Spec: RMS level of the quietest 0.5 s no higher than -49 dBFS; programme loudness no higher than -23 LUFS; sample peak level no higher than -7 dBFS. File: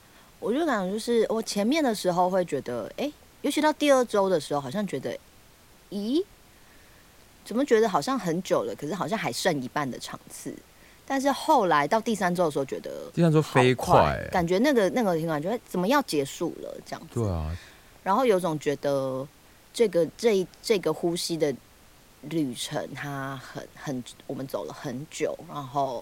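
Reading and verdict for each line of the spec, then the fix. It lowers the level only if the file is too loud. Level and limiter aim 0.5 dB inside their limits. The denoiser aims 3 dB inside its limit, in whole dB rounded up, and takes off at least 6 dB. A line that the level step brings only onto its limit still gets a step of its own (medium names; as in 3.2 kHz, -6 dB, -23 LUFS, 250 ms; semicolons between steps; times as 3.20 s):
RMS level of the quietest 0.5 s -55 dBFS: pass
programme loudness -26.5 LUFS: pass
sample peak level -6.0 dBFS: fail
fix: peak limiter -7.5 dBFS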